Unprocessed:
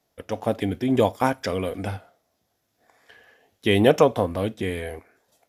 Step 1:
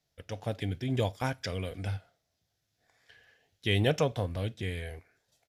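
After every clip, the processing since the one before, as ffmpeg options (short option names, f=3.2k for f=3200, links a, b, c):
-af "firequalizer=gain_entry='entry(150,0);entry(210,-11);entry(630,-10);entry(1100,-13);entry(1500,-6);entry(4300,-1);entry(12000,-10)':delay=0.05:min_phase=1,volume=-1.5dB"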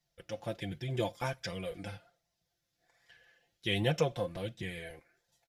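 -af "aecho=1:1:5.8:0.72,flanger=delay=1:depth=2.8:regen=54:speed=1.3:shape=sinusoidal"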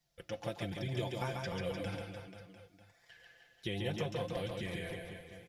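-filter_complex "[0:a]acrossover=split=1300|4300[a][b][c];[a]acompressor=threshold=-38dB:ratio=4[d];[b]acompressor=threshold=-49dB:ratio=4[e];[c]acompressor=threshold=-60dB:ratio=4[f];[d][e][f]amix=inputs=3:normalize=0,aecho=1:1:140|301|486.2|699.1|943.9:0.631|0.398|0.251|0.158|0.1,volume=1.5dB"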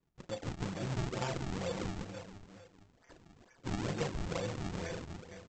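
-filter_complex "[0:a]asplit=2[a][b];[b]adelay=36,volume=-8.5dB[c];[a][c]amix=inputs=2:normalize=0,aresample=16000,acrusher=samples=18:mix=1:aa=0.000001:lfo=1:lforange=28.8:lforate=2.2,aresample=44100,volume=1dB"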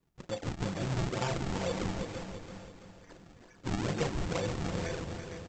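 -af "aecho=1:1:334|668|1002|1336|1670:0.355|0.17|0.0817|0.0392|0.0188,volume=3.5dB"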